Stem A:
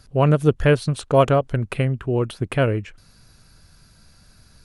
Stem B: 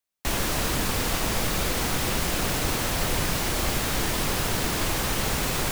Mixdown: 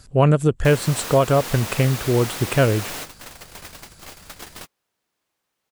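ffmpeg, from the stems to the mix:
ffmpeg -i stem1.wav -i stem2.wav -filter_complex "[0:a]equalizer=frequency=7700:width=4.6:gain=14.5,volume=2.5dB,asplit=2[link_01][link_02];[1:a]highpass=frequency=430:poles=1,adelay=400,volume=-3dB[link_03];[link_02]apad=whole_len=269604[link_04];[link_03][link_04]sidechaingate=range=-47dB:threshold=-45dB:ratio=16:detection=peak[link_05];[link_01][link_05]amix=inputs=2:normalize=0,alimiter=limit=-6.5dB:level=0:latency=1:release=268" out.wav

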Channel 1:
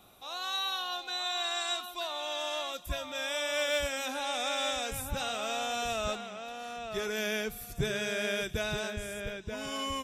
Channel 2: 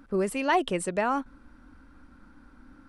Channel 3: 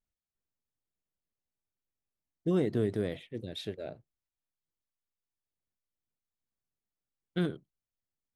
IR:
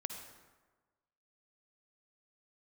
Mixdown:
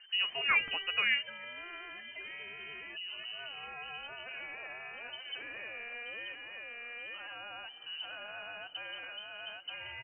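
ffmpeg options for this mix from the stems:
-filter_complex "[0:a]alimiter=level_in=2.5dB:limit=-24dB:level=0:latency=1:release=248,volume=-2.5dB,adelay=200,volume=-3dB[link_01];[1:a]flanger=delay=3.6:depth=4.5:regen=47:speed=0.89:shape=triangular,volume=0.5dB[link_02];[2:a]adelay=500,volume=-4dB[link_03];[link_01][link_03]amix=inputs=2:normalize=0,acompressor=mode=upward:threshold=-39dB:ratio=2.5,alimiter=level_in=8.5dB:limit=-24dB:level=0:latency=1:release=15,volume=-8.5dB,volume=0dB[link_04];[link_02][link_04]amix=inputs=2:normalize=0,equalizer=frequency=410:width_type=o:width=0.54:gain=-12.5,lowpass=frequency=2600:width_type=q:width=0.5098,lowpass=frequency=2600:width_type=q:width=0.6013,lowpass=frequency=2600:width_type=q:width=0.9,lowpass=frequency=2600:width_type=q:width=2.563,afreqshift=-3100"

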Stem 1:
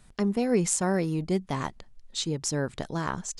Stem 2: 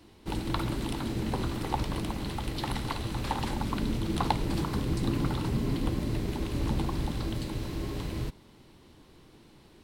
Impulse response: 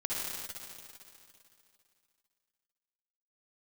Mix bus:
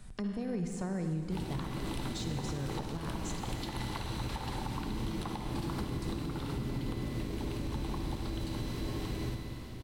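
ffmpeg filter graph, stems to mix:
-filter_complex "[0:a]deesser=0.7,lowshelf=frequency=250:gain=7,acrossover=split=130[link_01][link_02];[link_02]acompressor=threshold=-33dB:ratio=6[link_03];[link_01][link_03]amix=inputs=2:normalize=0,volume=-1.5dB,asplit=2[link_04][link_05];[link_05]volume=-8dB[link_06];[1:a]alimiter=limit=-20dB:level=0:latency=1:release=282,adelay=1050,volume=-3dB,asplit=2[link_07][link_08];[link_08]volume=-5.5dB[link_09];[2:a]atrim=start_sample=2205[link_10];[link_06][link_09]amix=inputs=2:normalize=0[link_11];[link_11][link_10]afir=irnorm=-1:irlink=0[link_12];[link_04][link_07][link_12]amix=inputs=3:normalize=0,alimiter=level_in=2.5dB:limit=-24dB:level=0:latency=1:release=381,volume=-2.5dB"

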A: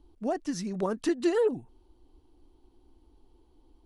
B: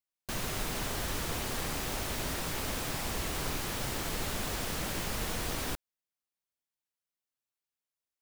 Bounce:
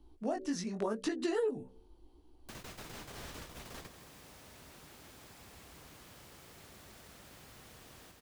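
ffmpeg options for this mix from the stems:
ffmpeg -i stem1.wav -i stem2.wav -filter_complex "[0:a]bandreject=frequency=63.66:width_type=h:width=4,bandreject=frequency=127.32:width_type=h:width=4,bandreject=frequency=190.98:width_type=h:width=4,bandreject=frequency=254.64:width_type=h:width=4,bandreject=frequency=318.3:width_type=h:width=4,bandreject=frequency=381.96:width_type=h:width=4,bandreject=frequency=445.62:width_type=h:width=4,bandreject=frequency=509.28:width_type=h:width=4,bandreject=frequency=572.94:width_type=h:width=4,flanger=delay=15.5:depth=6.5:speed=0.83,volume=2.5dB,asplit=2[link_01][link_02];[1:a]highpass=54,adelay=2200,volume=-10.5dB,asplit=2[link_03][link_04];[link_04]volume=-11dB[link_05];[link_02]apad=whole_len=459320[link_06];[link_03][link_06]sidechaingate=range=-33dB:threshold=-59dB:ratio=16:detection=peak[link_07];[link_05]aecho=0:1:161|322|483|644|805|966|1127|1288|1449:1|0.58|0.336|0.195|0.113|0.0656|0.0381|0.0221|0.0128[link_08];[link_01][link_07][link_08]amix=inputs=3:normalize=0,acrossover=split=260|7400[link_09][link_10][link_11];[link_09]acompressor=threshold=-44dB:ratio=4[link_12];[link_10]acompressor=threshold=-32dB:ratio=4[link_13];[link_11]acompressor=threshold=-57dB:ratio=4[link_14];[link_12][link_13][link_14]amix=inputs=3:normalize=0" out.wav

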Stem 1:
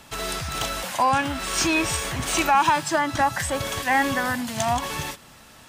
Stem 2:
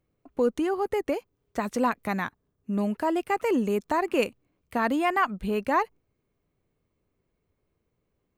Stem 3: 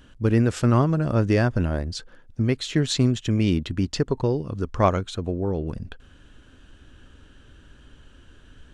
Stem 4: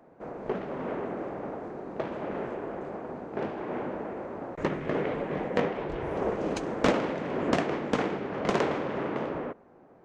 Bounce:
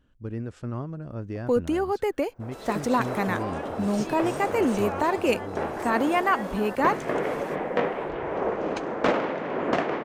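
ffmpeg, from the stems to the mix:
ffmpeg -i stem1.wav -i stem2.wav -i stem3.wav -i stem4.wav -filter_complex "[0:a]adelay=2400,volume=-18.5dB[link_01];[1:a]adelay=1100,volume=1dB[link_02];[2:a]highshelf=frequency=2200:gain=-9.5,volume=-13.5dB[link_03];[3:a]dynaudnorm=framelen=140:gausssize=11:maxgain=8dB,asplit=2[link_04][link_05];[link_05]highpass=frequency=720:poles=1,volume=11dB,asoftclip=type=tanh:threshold=-1dB[link_06];[link_04][link_06]amix=inputs=2:normalize=0,lowpass=frequency=1800:poles=1,volume=-6dB,adelay=2200,volume=-7dB[link_07];[link_01][link_02][link_03][link_07]amix=inputs=4:normalize=0" out.wav

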